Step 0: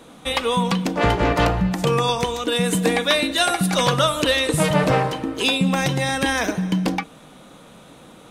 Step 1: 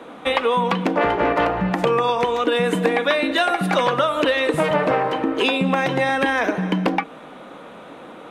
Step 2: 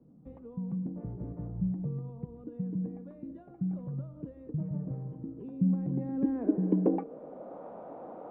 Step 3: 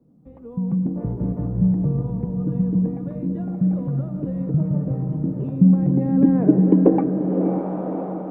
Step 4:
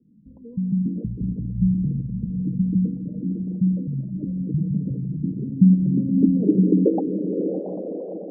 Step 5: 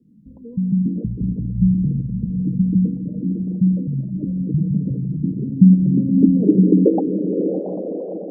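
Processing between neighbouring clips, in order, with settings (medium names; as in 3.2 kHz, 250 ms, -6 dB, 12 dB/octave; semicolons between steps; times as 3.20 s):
three-band isolator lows -16 dB, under 240 Hz, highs -18 dB, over 2.8 kHz; compression, threshold -24 dBFS, peak gain reduction 9 dB; trim +8.5 dB
low-pass sweep 140 Hz -> 720 Hz, 5.42–7.64 s; trim -8.5 dB
level rider gain up to 12 dB; echo that smears into a reverb 577 ms, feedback 46%, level -6 dB; trim +1 dB
resonances exaggerated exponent 3; small resonant body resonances 210/1000 Hz, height 10 dB, ringing for 90 ms; trim -4.5 dB
trim +4 dB; Opus 256 kbps 48 kHz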